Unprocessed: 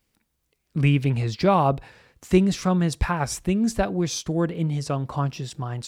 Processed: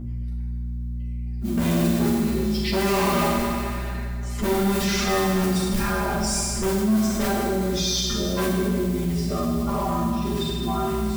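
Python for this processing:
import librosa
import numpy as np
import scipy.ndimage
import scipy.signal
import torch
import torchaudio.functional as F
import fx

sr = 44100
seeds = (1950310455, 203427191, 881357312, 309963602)

p1 = fx.spec_quant(x, sr, step_db=30)
p2 = fx.high_shelf(p1, sr, hz=2700.0, db=-9.0)
p3 = fx.level_steps(p2, sr, step_db=21)
p4 = fx.stretch_grains(p3, sr, factor=1.9, grain_ms=21.0)
p5 = fx.mod_noise(p4, sr, seeds[0], snr_db=18)
p6 = 10.0 ** (-36.5 / 20.0) * np.tanh(p5 / 10.0 ** (-36.5 / 20.0))
p7 = fx.add_hum(p6, sr, base_hz=60, snr_db=13)
p8 = p7 + fx.echo_feedback(p7, sr, ms=204, feedback_pct=47, wet_db=-16.5, dry=0)
p9 = fx.rev_fdn(p8, sr, rt60_s=1.6, lf_ratio=0.95, hf_ratio=0.9, size_ms=26.0, drr_db=-6.5)
p10 = fx.env_flatten(p9, sr, amount_pct=50)
y = p10 * librosa.db_to_amplitude(6.5)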